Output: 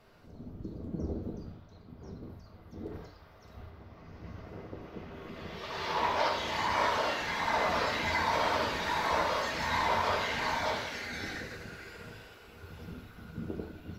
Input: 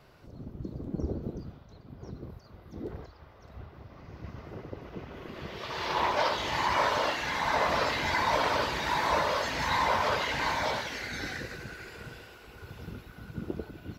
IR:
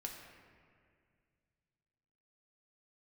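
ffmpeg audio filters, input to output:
-filter_complex "[0:a]asettb=1/sr,asplit=3[a][b][c];[a]atrim=end=2.934[d];[b]atrim=start=2.93:end=3.7,asetpts=PTS-STARTPTS,afade=t=in:d=0.004:c=qsin,afade=t=out:st=0.766:d=0.004:c=qsin,highshelf=f=3.8k:g=7[e];[c]atrim=start=3.696[f];[d][e]acrossfade=d=0.004:c1=hsin:c2=qsin[g];[g][f]acrossfade=d=0.004:c1=qsin:c2=hsin[h];[1:a]atrim=start_sample=2205,atrim=end_sample=4410,asetrate=37485,aresample=44100[i];[h][i]afir=irnorm=-1:irlink=0"

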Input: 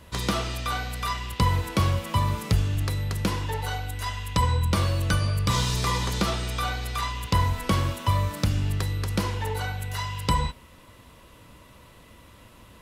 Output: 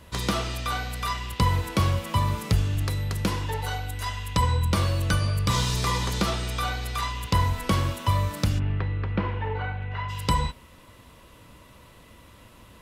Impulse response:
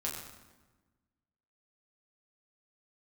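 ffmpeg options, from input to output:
-filter_complex "[0:a]asplit=3[a][b][c];[a]afade=t=out:st=8.58:d=0.02[d];[b]lowpass=f=2.6k:w=0.5412,lowpass=f=2.6k:w=1.3066,afade=t=in:st=8.58:d=0.02,afade=t=out:st=10.08:d=0.02[e];[c]afade=t=in:st=10.08:d=0.02[f];[d][e][f]amix=inputs=3:normalize=0"

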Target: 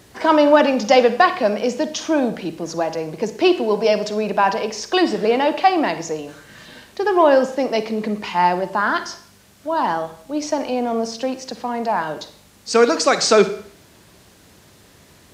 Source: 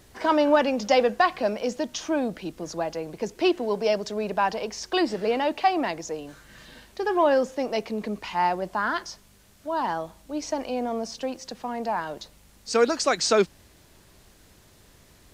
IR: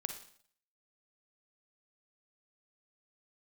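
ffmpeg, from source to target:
-filter_complex "[0:a]highpass=110,asplit=2[a][b];[1:a]atrim=start_sample=2205,lowshelf=f=68:g=11,highshelf=f=9.4k:g=-5.5[c];[b][c]afir=irnorm=-1:irlink=0,volume=5dB[d];[a][d]amix=inputs=2:normalize=0,volume=-1.5dB"

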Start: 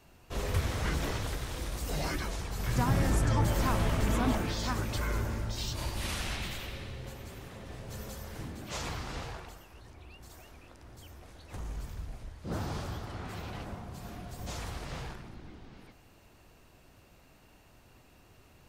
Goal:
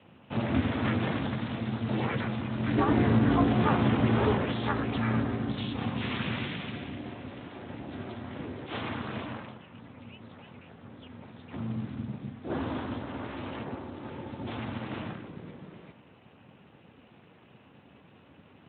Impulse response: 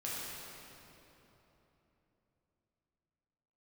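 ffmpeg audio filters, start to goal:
-af "aeval=exprs='val(0)*sin(2*PI*170*n/s)':c=same,volume=7dB" -ar 8000 -c:a libspeex -b:a 15k

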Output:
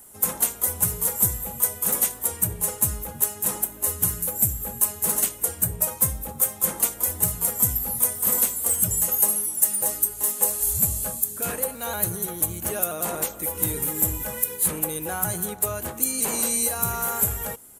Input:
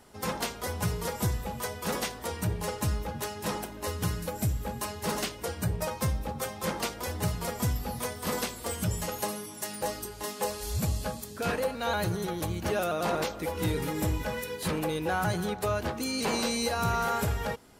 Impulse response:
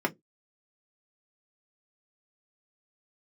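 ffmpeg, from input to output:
-af "aresample=32000,aresample=44100,aexciter=amount=12.4:drive=4.1:freq=7.2k,volume=-2dB"

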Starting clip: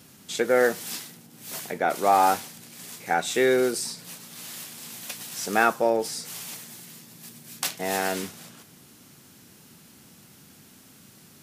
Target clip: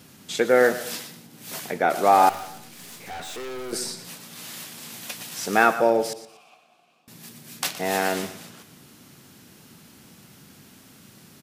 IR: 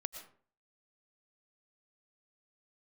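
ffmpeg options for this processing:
-filter_complex "[0:a]asettb=1/sr,asplit=3[a][b][c];[a]atrim=end=6.134[d];[b]atrim=start=6.13:end=7.08,asetpts=PTS-STARTPTS,afade=t=in:d=0.004:c=qsin,afade=t=out:st=0.946:d=0.004:c=qsin,asplit=3[e][f][g];[e]bandpass=f=730:t=q:w=8,volume=0dB[h];[f]bandpass=f=1.09k:t=q:w=8,volume=-6dB[i];[g]bandpass=f=2.44k:t=q:w=8,volume=-9dB[j];[h][i][j]amix=inputs=3:normalize=0[k];[c]atrim=start=7.076[l];[d][k]acrossfade=d=0.004:c1=hsin:c2=qsin[m];[m][l]acrossfade=d=0.004:c1=qsin:c2=hsin,aecho=1:1:119|238|357:0.178|0.0587|0.0194,asettb=1/sr,asplit=3[n][o][p];[n]atrim=end=2.294[q];[o]atrim=start=2.29:end=3.73,asetpts=PTS-STARTPTS,afade=t=in:d=0.004:c=qsin,afade=t=out:st=1.436:d=0.004:c=qsin,aeval=exprs='(tanh(63.1*val(0)+0.3)-tanh(0.3))/63.1':c=same[r];[p]atrim=start=3.726[s];[q][r]acrossfade=d=0.004:c1=hsin:c2=qsin[t];[t][s]acrossfade=d=0.004:c1=qsin:c2=hsin,asplit=2[u][v];[1:a]atrim=start_sample=2205,lowpass=6.1k[w];[v][w]afir=irnorm=-1:irlink=0,volume=-6dB[x];[u][x]amix=inputs=2:normalize=0"

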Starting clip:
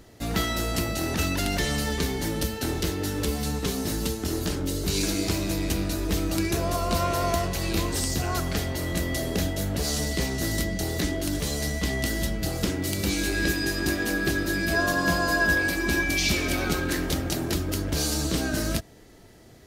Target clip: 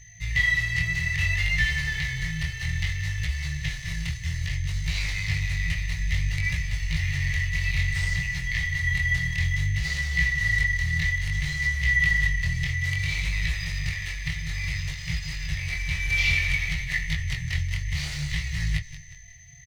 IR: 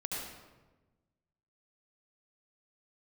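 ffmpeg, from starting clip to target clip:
-filter_complex "[0:a]asplit=5[a][b][c][d][e];[b]adelay=180,afreqshift=-34,volume=-13.5dB[f];[c]adelay=360,afreqshift=-68,volume=-20.6dB[g];[d]adelay=540,afreqshift=-102,volume=-27.8dB[h];[e]adelay=720,afreqshift=-136,volume=-34.9dB[i];[a][f][g][h][i]amix=inputs=5:normalize=0,aeval=exprs='val(0)+0.0126*sin(2*PI*6200*n/s)':c=same,afftfilt=real='re*(1-between(b*sr/4096,170,1700))':imag='im*(1-between(b*sr/4096,170,1700))':win_size=4096:overlap=0.75,adynamicsmooth=sensitivity=7:basefreq=2.2k,equalizer=f=2k:w=5.3:g=12,acrossover=split=3600[j][k];[k]acompressor=threshold=-43dB:ratio=4:attack=1:release=60[l];[j][l]amix=inputs=2:normalize=0,flanger=delay=17.5:depth=7.3:speed=0.59,volume=5.5dB"

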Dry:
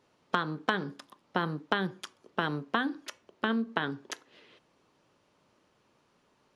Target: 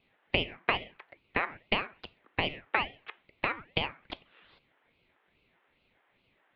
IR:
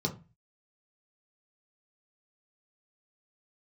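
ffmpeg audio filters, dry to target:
-af "highpass=f=590:t=q:w=0.5412,highpass=f=590:t=q:w=1.307,lowpass=f=2.5k:t=q:w=0.5176,lowpass=f=2.5k:t=q:w=0.7071,lowpass=f=2.5k:t=q:w=1.932,afreqshift=280,aeval=exprs='val(0)*sin(2*PI*870*n/s+870*0.55/2.4*sin(2*PI*2.4*n/s))':c=same,volume=5dB"

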